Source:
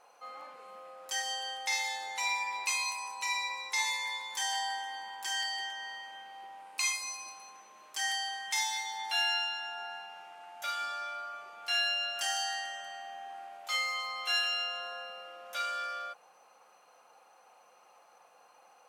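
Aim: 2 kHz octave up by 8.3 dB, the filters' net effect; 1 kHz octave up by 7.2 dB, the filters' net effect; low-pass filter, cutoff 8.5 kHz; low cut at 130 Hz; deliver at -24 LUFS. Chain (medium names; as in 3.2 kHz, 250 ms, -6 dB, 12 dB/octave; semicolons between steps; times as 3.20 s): high-pass 130 Hz; low-pass 8.5 kHz; peaking EQ 1 kHz +7 dB; peaking EQ 2 kHz +8.5 dB; trim +3 dB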